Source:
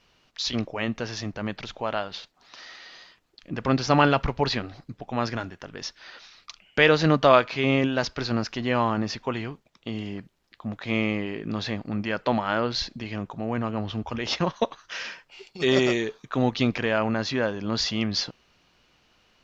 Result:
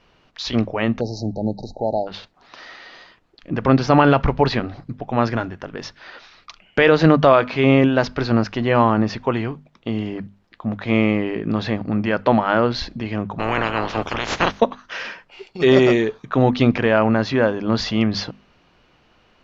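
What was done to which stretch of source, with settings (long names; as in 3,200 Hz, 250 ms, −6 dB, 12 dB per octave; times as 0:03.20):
0:01.01–0:02.07: time-frequency box erased 900–3,800 Hz
0:13.38–0:14.59: ceiling on every frequency bin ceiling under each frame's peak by 29 dB
whole clip: low-pass filter 1,600 Hz 6 dB per octave; mains-hum notches 50/100/150/200/250 Hz; boost into a limiter +10 dB; level −1 dB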